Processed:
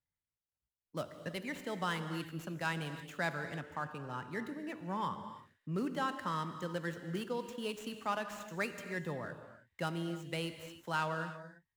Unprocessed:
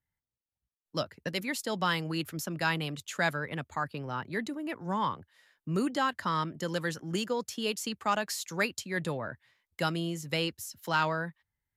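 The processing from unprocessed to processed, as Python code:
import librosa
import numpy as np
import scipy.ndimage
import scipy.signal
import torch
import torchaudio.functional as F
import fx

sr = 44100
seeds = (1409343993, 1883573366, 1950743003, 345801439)

y = scipy.ndimage.median_filter(x, 9, mode='constant')
y = fx.rev_gated(y, sr, seeds[0], gate_ms=350, shape='flat', drr_db=8.5)
y = F.gain(torch.from_numpy(y), -6.5).numpy()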